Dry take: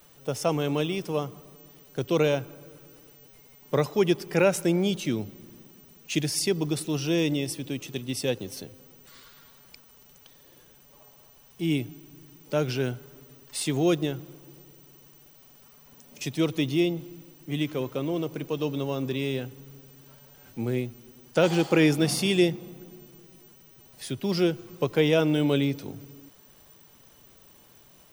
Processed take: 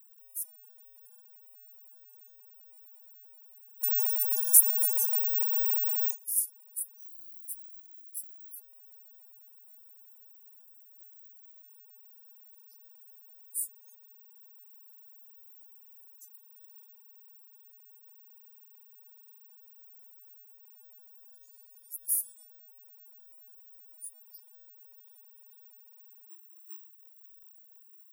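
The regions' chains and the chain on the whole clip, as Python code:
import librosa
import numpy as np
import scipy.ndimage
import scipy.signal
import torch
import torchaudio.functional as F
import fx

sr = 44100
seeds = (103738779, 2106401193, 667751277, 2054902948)

y = fx.chain(x, sr, fx.high_shelf_res(hz=3800.0, db=12.0, q=3.0),
    fx.echo_single(ms=268, db=-14.5), at=(3.83, 6.11))
y = fx.chain(y, sr, fx.halfwave_gain(db=-7.0),
    fx.highpass(hz=48.0, slope=6),
    fx.doppler_dist(depth_ms=0.21), at=(6.99, 8.56))
y = fx.noise_reduce_blind(y, sr, reduce_db=16)
y = scipy.signal.sosfilt(scipy.signal.cheby2(4, 80, 2600.0, 'highpass', fs=sr, output='sos'), y)
y = fx.tilt_eq(y, sr, slope=1.5)
y = y * 10.0 ** (9.0 / 20.0)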